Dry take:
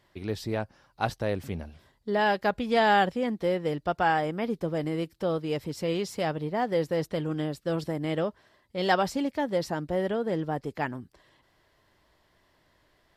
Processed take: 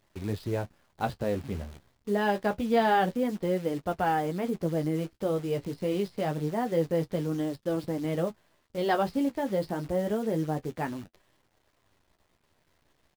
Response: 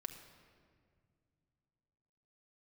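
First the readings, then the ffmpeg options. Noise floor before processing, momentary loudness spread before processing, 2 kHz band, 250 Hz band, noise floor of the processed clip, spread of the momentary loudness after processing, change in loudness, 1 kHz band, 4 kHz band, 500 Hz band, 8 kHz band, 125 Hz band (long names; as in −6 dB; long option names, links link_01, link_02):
−68 dBFS, 9 LU, −5.0 dB, +1.0 dB, −72 dBFS, 8 LU, −1.0 dB, −2.5 dB, −6.0 dB, −1.0 dB, −2.0 dB, +0.5 dB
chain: -af "tiltshelf=frequency=860:gain=4,aresample=11025,aresample=44100,acrusher=bits=8:dc=4:mix=0:aa=0.000001,flanger=delay=9.3:depth=6.6:regen=-34:speed=0.26:shape=triangular,volume=1dB"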